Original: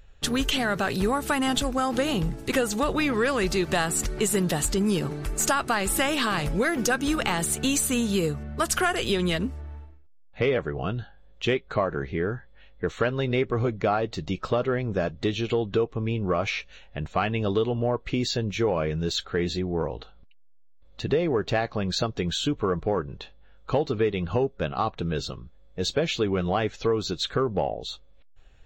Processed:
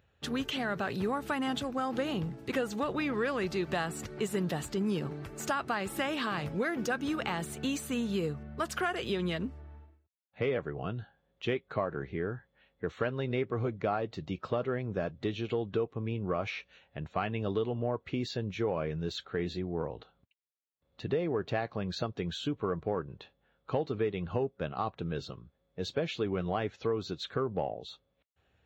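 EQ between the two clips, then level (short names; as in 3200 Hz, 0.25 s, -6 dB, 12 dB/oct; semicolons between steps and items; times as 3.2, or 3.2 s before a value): HPF 76 Hz 24 dB/oct; bell 9700 Hz -12 dB 1.6 oct; -7.0 dB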